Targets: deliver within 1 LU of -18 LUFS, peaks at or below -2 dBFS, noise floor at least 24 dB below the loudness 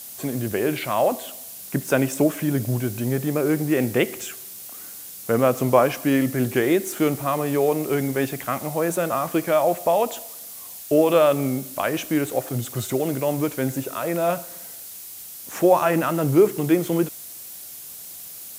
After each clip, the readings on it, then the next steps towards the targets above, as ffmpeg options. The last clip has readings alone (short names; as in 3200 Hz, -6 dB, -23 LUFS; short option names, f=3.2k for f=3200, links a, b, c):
noise floor -39 dBFS; noise floor target -47 dBFS; loudness -22.5 LUFS; peak -4.0 dBFS; loudness target -18.0 LUFS
-> -af "afftdn=nr=8:nf=-39"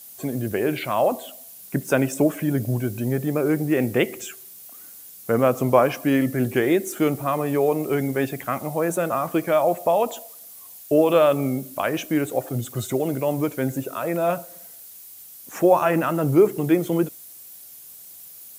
noise floor -43 dBFS; noise floor target -47 dBFS
-> -af "afftdn=nr=6:nf=-43"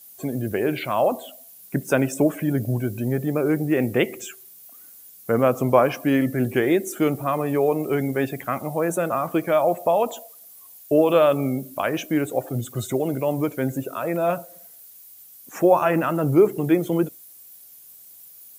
noise floor -47 dBFS; loudness -22.5 LUFS; peak -4.0 dBFS; loudness target -18.0 LUFS
-> -af "volume=4.5dB,alimiter=limit=-2dB:level=0:latency=1"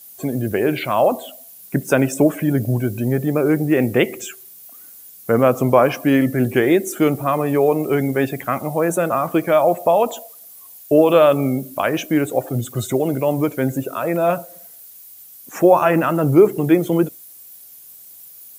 loudness -18.0 LUFS; peak -2.0 dBFS; noise floor -42 dBFS